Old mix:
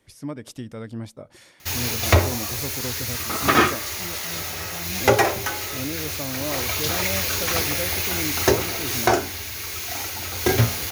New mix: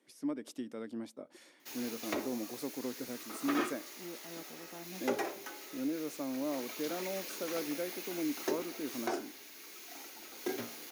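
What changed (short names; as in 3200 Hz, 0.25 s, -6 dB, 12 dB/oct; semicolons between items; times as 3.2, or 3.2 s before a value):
background -10.5 dB; master: add ladder high-pass 230 Hz, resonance 45%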